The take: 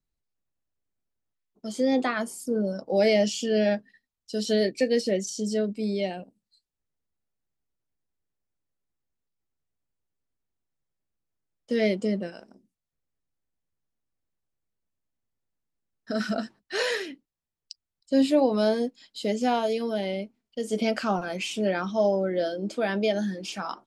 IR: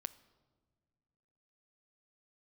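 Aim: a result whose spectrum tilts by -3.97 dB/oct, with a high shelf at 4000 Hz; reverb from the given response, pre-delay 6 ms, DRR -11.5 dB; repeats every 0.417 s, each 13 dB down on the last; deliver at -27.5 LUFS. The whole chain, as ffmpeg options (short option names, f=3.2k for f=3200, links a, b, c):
-filter_complex "[0:a]highshelf=f=4k:g=6.5,aecho=1:1:417|834|1251:0.224|0.0493|0.0108,asplit=2[a][b];[1:a]atrim=start_sample=2205,adelay=6[c];[b][c]afir=irnorm=-1:irlink=0,volume=14.5dB[d];[a][d]amix=inputs=2:normalize=0,volume=-12.5dB"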